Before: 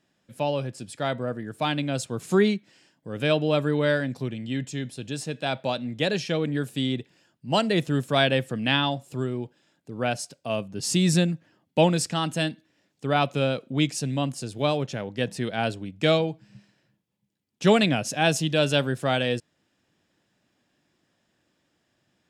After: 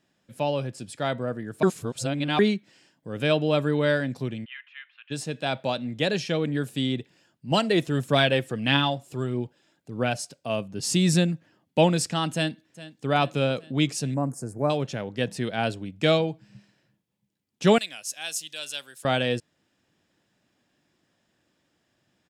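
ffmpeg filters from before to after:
-filter_complex "[0:a]asplit=3[a][b][c];[a]afade=t=out:st=4.44:d=0.02[d];[b]asuperpass=centerf=1800:order=8:qfactor=0.99,afade=t=in:st=4.44:d=0.02,afade=t=out:st=5.1:d=0.02[e];[c]afade=t=in:st=5.1:d=0.02[f];[d][e][f]amix=inputs=3:normalize=0,asettb=1/sr,asplit=3[g][h][i];[g]atrim=end=7.514[j];[h]atrim=start=7.51:end=10.18,asetpts=PTS-STARTPTS,afade=t=in:d=0.004:c=qsin,afade=t=out:st=2.666:d=0.004:c=qsin,aphaser=in_gain=1:out_gain=1:delay=3.3:decay=0.32:speed=1.6:type=triangular[k];[i]atrim=start=10.176[l];[j][k]acrossfade=d=0.004:c1=hsin:c2=qsin[m];[m][l]acrossfade=d=0.004:c1=qsin:c2=hsin,asplit=2[n][o];[o]afade=t=in:st=12.33:d=0.01,afade=t=out:st=13.1:d=0.01,aecho=0:1:410|820|1230|1640|2050|2460:0.149624|0.0897741|0.0538645|0.0323187|0.0193912|0.0116347[p];[n][p]amix=inputs=2:normalize=0,asettb=1/sr,asplit=3[q][r][s];[q]atrim=end=14.144[t];[r]atrim=start=14.14:end=14.7,asetpts=PTS-STARTPTS,afade=t=in:d=0.004:c=qsin,afade=t=out:st=0.556:d=0.004:c=qsin,asuperstop=centerf=3300:order=4:qfactor=0.59[u];[s]atrim=start=14.696[v];[t][u]acrossfade=d=0.004:c1=hsin:c2=qsin[w];[w][v]acrossfade=d=0.004:c1=qsin:c2=hsin,asettb=1/sr,asplit=3[x][y][z];[x]atrim=end=17.784[aa];[y]atrim=start=17.78:end=19.05,asetpts=PTS-STARTPTS,afade=t=in:d=0.004:c=qsin,afade=t=out:st=1.266:d=0.004:c=qsin,aderivative[ab];[z]atrim=start=19.046[ac];[aa][ab]acrossfade=d=0.004:c1=hsin:c2=qsin[ad];[ad][ac]acrossfade=d=0.004:c1=qsin:c2=hsin,asplit=3[ae][af][ag];[ae]atrim=end=1.632[ah];[af]atrim=start=1.628:end=2.392,asetpts=PTS-STARTPTS,areverse[ai];[ag]atrim=start=2.388[aj];[ah][ai]acrossfade=d=0.004:c1=hsin:c2=hsin[ak];[ak][aj]acrossfade=d=0.004:c1=hsin:c2=hsin"

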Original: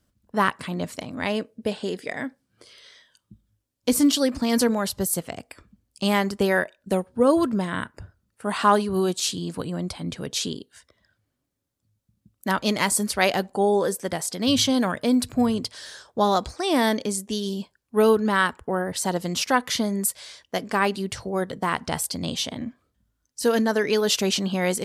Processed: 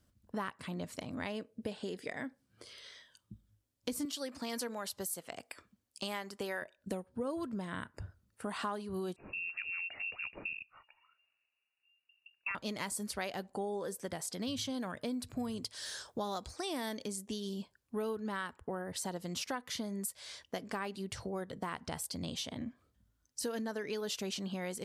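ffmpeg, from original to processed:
-filter_complex "[0:a]asettb=1/sr,asplit=3[a][b][c];[a]atrim=end=4.054[d];[b]atrim=start=4.05:end=6.62,asetpts=PTS-STARTPTS,afade=t=in:d=0.004:c=qsin,afade=t=out:st=2.566:d=0.004:c=qsin,highpass=f=550:p=1[e];[c]atrim=start=6.616[f];[d][e]acrossfade=d=0.004:c1=hsin:c2=qsin[g];[g][f]acrossfade=d=0.004:c1=qsin:c2=hsin,asettb=1/sr,asplit=3[h][i][j];[h]atrim=end=9.164[k];[i]atrim=start=9.16:end=12.55,asetpts=PTS-STARTPTS,afade=t=in:d=0.004:c=qsin,afade=t=out:st=3.386:d=0.004:c=qsin,lowpass=f=2.5k:t=q:w=0.5098,lowpass=f=2.5k:t=q:w=0.6013,lowpass=f=2.5k:t=q:w=0.9,lowpass=f=2.5k:t=q:w=2.563,afreqshift=-2900[l];[j]atrim=start=12.546[m];[k][l]acrossfade=d=0.004:c1=hsin:c2=qsin[n];[n][m]acrossfade=d=0.004:c1=qsin:c2=hsin,asettb=1/sr,asplit=3[o][p][q];[o]atrim=end=15.374[r];[p]atrim=start=15.37:end=17.08,asetpts=PTS-STARTPTS,afade=t=in:d=0.004:c=qsin,afade=t=out:st=1.706:d=0.004:c=qsin,highshelf=f=4.1k:g=7[s];[q]atrim=start=17.076[t];[r][s]acrossfade=d=0.004:c1=hsin:c2=qsin[u];[u][t]acrossfade=d=0.004:c1=qsin:c2=hsin,equalizer=f=88:t=o:w=0.77:g=3.5,acompressor=threshold=-35dB:ratio=4,volume=-3dB"

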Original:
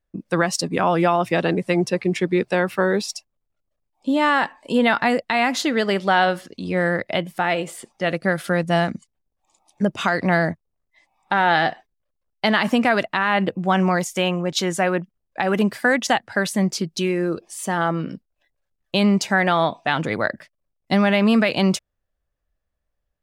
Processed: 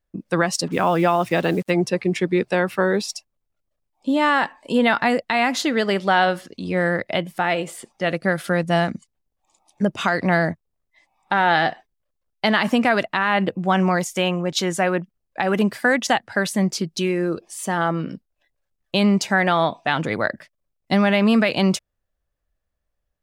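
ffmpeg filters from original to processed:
-filter_complex "[0:a]asettb=1/sr,asplit=3[a][b][c];[a]atrim=end=0.674[d];[b]atrim=start=0.67:end=1.71,asetpts=PTS-STARTPTS,afade=t=in:d=0.004:c=qsin,afade=t=out:st=1.036:d=0.004:c=qsin,acrusher=bits=6:mix=0:aa=0.5[e];[c]atrim=start=1.706[f];[d][e]acrossfade=d=0.004:c1=hsin:c2=qsin[g];[g][f]acrossfade=d=0.004:c1=qsin:c2=hsin"

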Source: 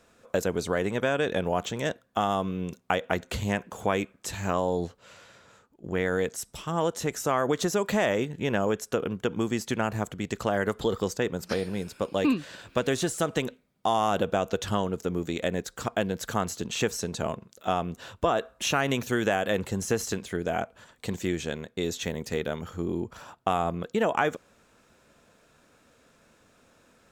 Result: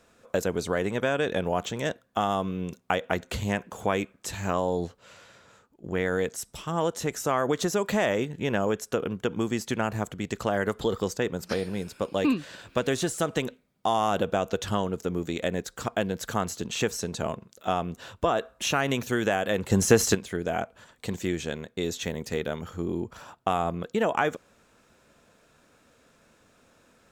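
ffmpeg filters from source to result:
-filter_complex "[0:a]asplit=3[a][b][c];[a]atrim=end=19.702[d];[b]atrim=start=19.698:end=20.152,asetpts=PTS-STARTPTS,volume=8dB[e];[c]atrim=start=20.148[f];[d][e]acrossfade=d=0.004:c1=hsin:c2=hsin[g];[g][f]acrossfade=d=0.004:c1=hsin:c2=hsin"

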